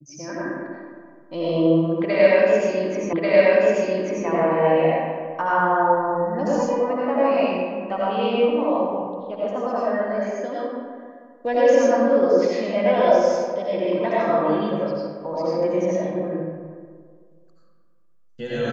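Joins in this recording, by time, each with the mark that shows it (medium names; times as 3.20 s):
3.13 s: repeat of the last 1.14 s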